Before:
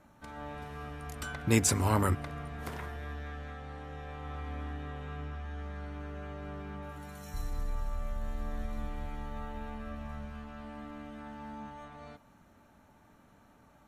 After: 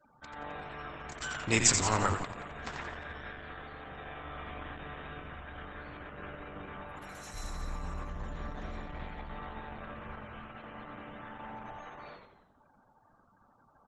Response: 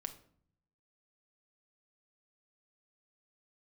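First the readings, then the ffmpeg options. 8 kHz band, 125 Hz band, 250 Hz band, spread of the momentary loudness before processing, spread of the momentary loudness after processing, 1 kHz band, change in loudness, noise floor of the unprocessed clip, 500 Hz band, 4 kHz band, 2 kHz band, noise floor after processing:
+4.5 dB, −5.5 dB, −4.5 dB, 17 LU, 16 LU, +1.5 dB, +0.5 dB, −61 dBFS, −1.5 dB, +6.0 dB, +4.0 dB, −66 dBFS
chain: -filter_complex "[0:a]tiltshelf=frequency=690:gain=-6,afftfilt=real='re*gte(hypot(re,im),0.00251)':imag='im*gte(hypot(re,im),0.00251)':win_size=1024:overlap=0.75,equalizer=frequency=69:width=5.4:gain=-3.5,asplit=2[link_01][link_02];[link_02]asplit=6[link_03][link_04][link_05][link_06][link_07][link_08];[link_03]adelay=88,afreqshift=-100,volume=-5.5dB[link_09];[link_04]adelay=176,afreqshift=-200,volume=-11.9dB[link_10];[link_05]adelay=264,afreqshift=-300,volume=-18.3dB[link_11];[link_06]adelay=352,afreqshift=-400,volume=-24.6dB[link_12];[link_07]adelay=440,afreqshift=-500,volume=-31dB[link_13];[link_08]adelay=528,afreqshift=-600,volume=-37.4dB[link_14];[link_09][link_10][link_11][link_12][link_13][link_14]amix=inputs=6:normalize=0[link_15];[link_01][link_15]amix=inputs=2:normalize=0" -ar 48000 -c:a libopus -b:a 12k

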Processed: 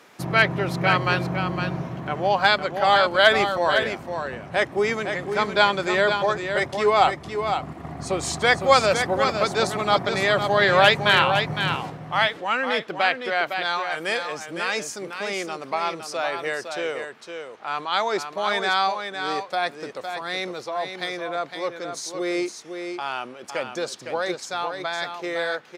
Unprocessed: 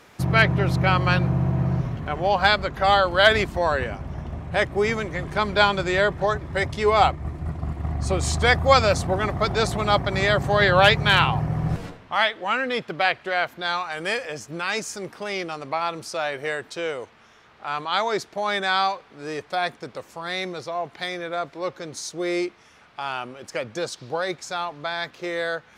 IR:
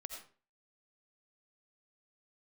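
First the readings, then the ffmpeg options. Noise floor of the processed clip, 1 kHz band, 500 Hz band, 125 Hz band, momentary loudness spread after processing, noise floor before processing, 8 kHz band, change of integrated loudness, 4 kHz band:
−42 dBFS, +1.0 dB, +0.5 dB, −7.5 dB, 13 LU, −53 dBFS, +1.0 dB, 0.0 dB, +1.0 dB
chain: -af "highpass=200,aecho=1:1:509:0.447"

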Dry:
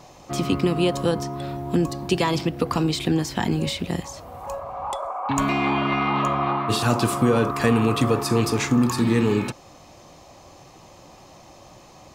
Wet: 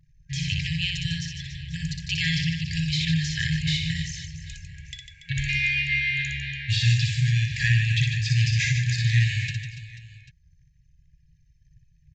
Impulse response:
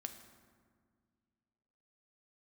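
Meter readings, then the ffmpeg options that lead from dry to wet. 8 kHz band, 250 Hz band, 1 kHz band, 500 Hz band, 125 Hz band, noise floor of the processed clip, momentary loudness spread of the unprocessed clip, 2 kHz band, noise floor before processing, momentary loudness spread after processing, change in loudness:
−2.5 dB, below −10 dB, below −40 dB, below −40 dB, +3.5 dB, −60 dBFS, 11 LU, +4.5 dB, −48 dBFS, 16 LU, −1.5 dB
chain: -filter_complex "[0:a]anlmdn=0.398,afftfilt=real='re*(1-between(b*sr/4096,170,1600))':imag='im*(1-between(b*sr/4096,170,1600))':win_size=4096:overlap=0.75,acrossover=split=4100[link_01][link_02];[link_02]acompressor=threshold=-37dB:ratio=4:attack=1:release=60[link_03];[link_01][link_03]amix=inputs=2:normalize=0,aecho=1:1:60|150|285|487.5|791.2:0.631|0.398|0.251|0.158|0.1,aresample=16000,aresample=44100,volume=3dB"

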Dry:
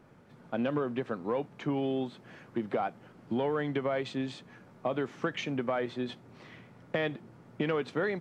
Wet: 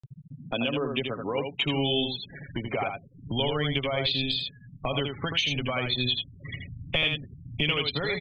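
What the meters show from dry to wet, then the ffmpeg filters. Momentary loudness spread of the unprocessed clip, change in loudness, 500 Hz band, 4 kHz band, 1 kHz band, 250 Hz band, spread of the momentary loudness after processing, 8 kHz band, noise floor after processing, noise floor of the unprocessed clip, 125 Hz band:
17 LU, +5.5 dB, +1.0 dB, +19.0 dB, +2.0 dB, +1.0 dB, 12 LU, can't be measured, −52 dBFS, −57 dBFS, +8.0 dB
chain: -filter_complex "[0:a]asplit=2[link_01][link_02];[link_02]acompressor=threshold=-39dB:ratio=6,volume=0dB[link_03];[link_01][link_03]amix=inputs=2:normalize=0,aecho=1:1:7.2:0.41,agate=range=-7dB:threshold=-43dB:ratio=16:detection=peak,afftfilt=real='re*gte(hypot(re,im),0.0112)':imag='im*gte(hypot(re,im),0.0112)':win_size=1024:overlap=0.75,aexciter=amount=10.2:drive=8.5:freq=2600,asplit=2[link_04][link_05];[link_05]aecho=0:1:80:0.531[link_06];[link_04][link_06]amix=inputs=2:normalize=0,alimiter=limit=-12dB:level=0:latency=1:release=318,asubboost=boost=6.5:cutoff=120,lowpass=3300,acompressor=mode=upward:threshold=-28dB:ratio=2.5,asubboost=boost=7.5:cutoff=54"

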